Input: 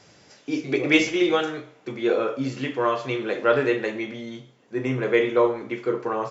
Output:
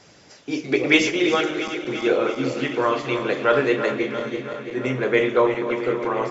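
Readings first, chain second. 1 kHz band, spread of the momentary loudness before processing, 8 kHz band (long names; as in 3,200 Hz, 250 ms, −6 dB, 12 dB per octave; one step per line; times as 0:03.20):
+2.5 dB, 14 LU, can't be measured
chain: feedback delay that plays each chunk backwards 168 ms, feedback 83%, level −10.5 dB
harmonic and percussive parts rebalanced harmonic −6 dB
level +5 dB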